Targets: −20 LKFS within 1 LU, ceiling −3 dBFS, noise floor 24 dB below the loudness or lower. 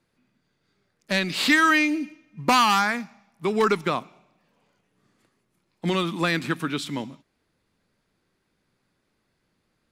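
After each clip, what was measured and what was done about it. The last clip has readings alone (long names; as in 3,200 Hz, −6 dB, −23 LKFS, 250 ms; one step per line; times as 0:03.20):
integrated loudness −23.0 LKFS; sample peak −8.0 dBFS; target loudness −20.0 LKFS
→ level +3 dB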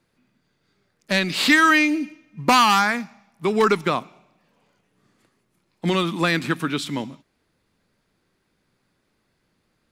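integrated loudness −20.0 LKFS; sample peak −5.0 dBFS; background noise floor −71 dBFS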